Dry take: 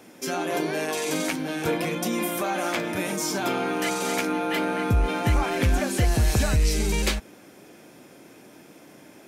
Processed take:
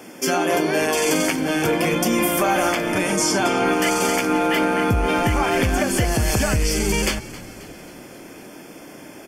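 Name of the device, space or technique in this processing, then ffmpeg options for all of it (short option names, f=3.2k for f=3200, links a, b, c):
PA system with an anti-feedback notch: -filter_complex "[0:a]asettb=1/sr,asplit=3[a][b][c];[a]atrim=end=2.834[d];[b]atrim=start=2.83:end=3.65,asetpts=PTS-STARTPTS,afade=t=in:d=0.004:c=qsin,afade=t=out:st=0.816:d=0.004:c=qsin,lowpass=f=11k:w=0.5412,lowpass=f=11k:w=1.3066[e];[c]atrim=start=3.646[f];[d][e]acrossfade=d=0.004:c1=hsin:c2=qsin[g];[g][f]acrossfade=d=0.004:c1=qsin:c2=hsin,highpass=f=110:p=1,asuperstop=centerf=3900:order=12:qfactor=6.6,alimiter=limit=-18.5dB:level=0:latency=1:release=232,asplit=6[h][i][j][k][l][m];[i]adelay=268,afreqshift=-80,volume=-18dB[n];[j]adelay=536,afreqshift=-160,volume=-22.9dB[o];[k]adelay=804,afreqshift=-240,volume=-27.8dB[p];[l]adelay=1072,afreqshift=-320,volume=-32.6dB[q];[m]adelay=1340,afreqshift=-400,volume=-37.5dB[r];[h][n][o][p][q][r]amix=inputs=6:normalize=0,volume=9dB"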